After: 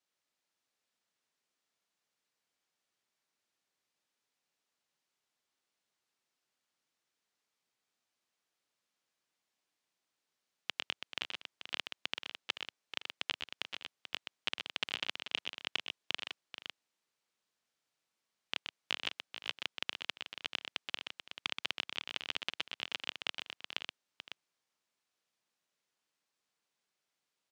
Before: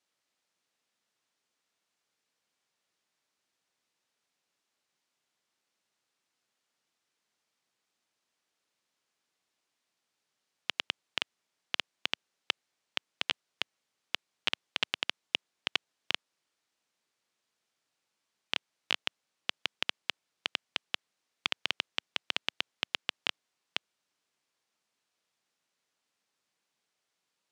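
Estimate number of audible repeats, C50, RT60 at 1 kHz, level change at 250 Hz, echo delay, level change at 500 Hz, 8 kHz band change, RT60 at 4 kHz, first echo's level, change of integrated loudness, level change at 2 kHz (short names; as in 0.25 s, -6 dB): 4, none, none, -4.0 dB, 0.126 s, -4.0 dB, -4.0 dB, none, -7.0 dB, -4.5 dB, -4.0 dB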